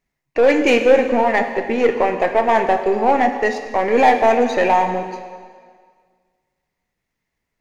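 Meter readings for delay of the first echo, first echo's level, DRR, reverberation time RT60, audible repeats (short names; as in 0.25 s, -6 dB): none, none, 6.0 dB, 1.8 s, none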